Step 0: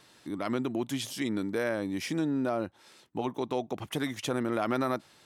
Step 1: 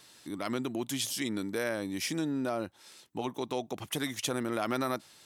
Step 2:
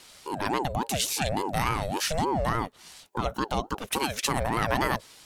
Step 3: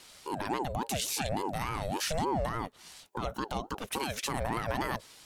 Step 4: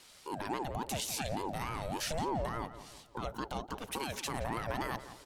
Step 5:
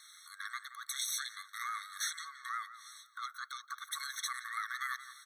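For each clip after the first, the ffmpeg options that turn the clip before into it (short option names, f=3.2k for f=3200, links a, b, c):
-af "highshelf=f=3.3k:g=10.5,volume=-3dB"
-af "aeval=exprs='val(0)*sin(2*PI*500*n/s+500*0.4/3.5*sin(2*PI*3.5*n/s))':c=same,volume=8.5dB"
-af "alimiter=limit=-18.5dB:level=0:latency=1:release=40,volume=-2.5dB"
-filter_complex "[0:a]asplit=2[a][b];[b]adelay=172,lowpass=f=2.5k:p=1,volume=-12.5dB,asplit=2[c][d];[d]adelay=172,lowpass=f=2.5k:p=1,volume=0.46,asplit=2[e][f];[f]adelay=172,lowpass=f=2.5k:p=1,volume=0.46,asplit=2[g][h];[h]adelay=172,lowpass=f=2.5k:p=1,volume=0.46,asplit=2[i][j];[j]adelay=172,lowpass=f=2.5k:p=1,volume=0.46[k];[a][c][e][g][i][k]amix=inputs=6:normalize=0,volume=-4dB"
-af "afftfilt=real='re*eq(mod(floor(b*sr/1024/1100),2),1)':imag='im*eq(mod(floor(b*sr/1024/1100),2),1)':win_size=1024:overlap=0.75,volume=4.5dB"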